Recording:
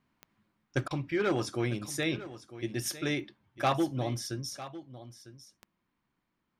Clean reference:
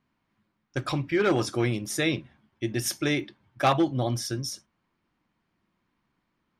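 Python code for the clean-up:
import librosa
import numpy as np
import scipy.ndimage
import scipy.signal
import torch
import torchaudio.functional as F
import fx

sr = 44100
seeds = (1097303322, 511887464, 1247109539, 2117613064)

y = fx.fix_declick_ar(x, sr, threshold=10.0)
y = fx.fix_interpolate(y, sr, at_s=(0.88,), length_ms=26.0)
y = fx.fix_echo_inverse(y, sr, delay_ms=951, level_db=-15.0)
y = fx.fix_level(y, sr, at_s=0.88, step_db=5.5)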